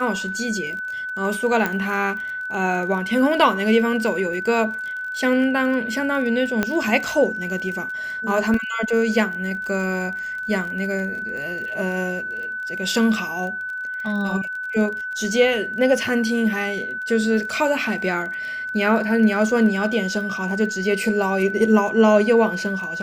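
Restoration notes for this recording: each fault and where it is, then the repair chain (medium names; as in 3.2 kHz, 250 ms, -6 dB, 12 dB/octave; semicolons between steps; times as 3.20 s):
crackle 29 per s -30 dBFS
whine 1.5 kHz -26 dBFS
1.66 s: pop -8 dBFS
6.63 s: pop -7 dBFS
8.54 s: dropout 2.3 ms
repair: de-click; band-stop 1.5 kHz, Q 30; interpolate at 8.54 s, 2.3 ms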